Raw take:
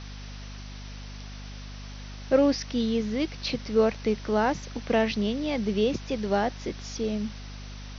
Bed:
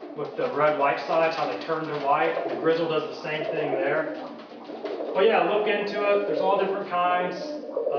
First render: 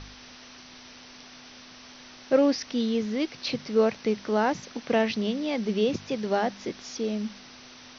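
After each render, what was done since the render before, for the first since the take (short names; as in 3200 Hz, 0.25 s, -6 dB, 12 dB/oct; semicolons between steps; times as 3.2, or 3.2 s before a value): de-hum 50 Hz, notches 4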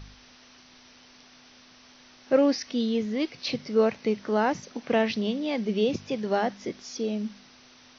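noise print and reduce 6 dB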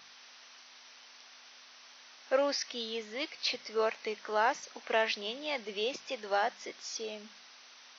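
HPF 750 Hz 12 dB/oct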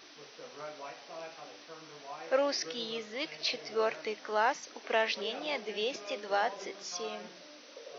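add bed -22.5 dB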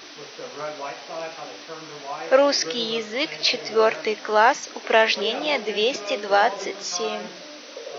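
gain +12 dB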